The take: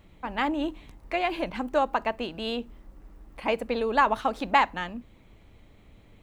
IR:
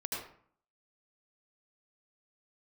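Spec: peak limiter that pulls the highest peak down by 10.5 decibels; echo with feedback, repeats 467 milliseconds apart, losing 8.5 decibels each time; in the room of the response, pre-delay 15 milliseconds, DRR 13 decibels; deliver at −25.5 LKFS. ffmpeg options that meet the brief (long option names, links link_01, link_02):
-filter_complex "[0:a]alimiter=limit=-18dB:level=0:latency=1,aecho=1:1:467|934|1401|1868:0.376|0.143|0.0543|0.0206,asplit=2[link_01][link_02];[1:a]atrim=start_sample=2205,adelay=15[link_03];[link_02][link_03]afir=irnorm=-1:irlink=0,volume=-15.5dB[link_04];[link_01][link_04]amix=inputs=2:normalize=0,volume=5dB"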